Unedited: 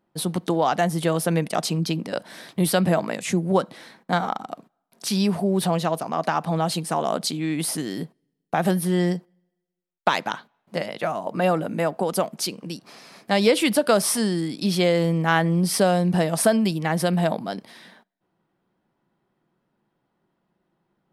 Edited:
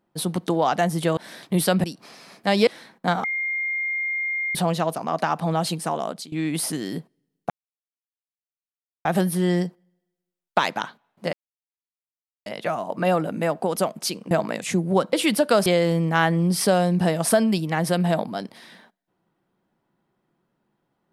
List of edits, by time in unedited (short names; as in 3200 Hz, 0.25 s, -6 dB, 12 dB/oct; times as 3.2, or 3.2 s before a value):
1.17–2.23 cut
2.9–3.72 swap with 12.68–13.51
4.29–5.6 bleep 2120 Hz -23 dBFS
6.68–7.37 fade out equal-power, to -19.5 dB
8.55 insert silence 1.55 s
10.83 insert silence 1.13 s
14.04–14.79 cut